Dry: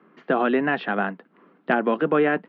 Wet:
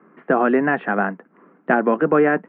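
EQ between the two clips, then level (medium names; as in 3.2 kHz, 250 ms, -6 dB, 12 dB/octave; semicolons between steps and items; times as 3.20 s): low-pass 2.1 kHz 24 dB/octave; +4.0 dB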